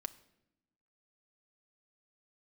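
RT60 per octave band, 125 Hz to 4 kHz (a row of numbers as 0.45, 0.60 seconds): 1.2, 1.4, 0.95, 0.70, 0.75, 0.65 seconds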